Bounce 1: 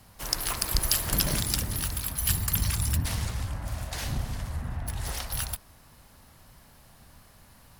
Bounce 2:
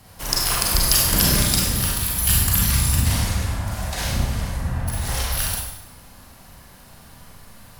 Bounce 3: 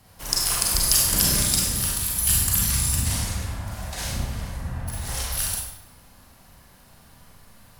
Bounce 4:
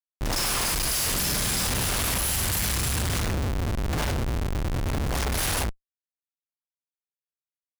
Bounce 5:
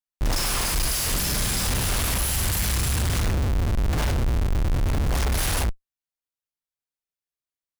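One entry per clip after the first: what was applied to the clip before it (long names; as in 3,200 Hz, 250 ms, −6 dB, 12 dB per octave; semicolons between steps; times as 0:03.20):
four-comb reverb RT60 0.83 s, combs from 32 ms, DRR −3 dB; level +4.5 dB
dynamic equaliser 8,200 Hz, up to +8 dB, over −36 dBFS, Q 0.84; level −6 dB
comparator with hysteresis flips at −28.5 dBFS
low-shelf EQ 76 Hz +8.5 dB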